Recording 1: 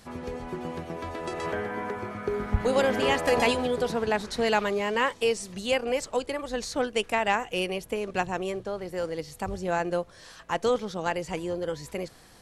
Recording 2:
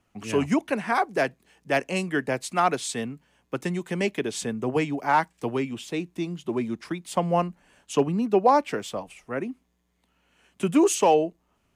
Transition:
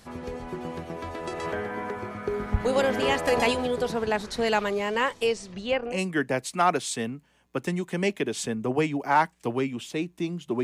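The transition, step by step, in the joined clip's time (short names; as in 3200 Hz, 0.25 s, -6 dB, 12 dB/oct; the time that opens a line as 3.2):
recording 1
5.26–6.02 LPF 8300 Hz -> 1500 Hz
5.92 switch to recording 2 from 1.9 s, crossfade 0.20 s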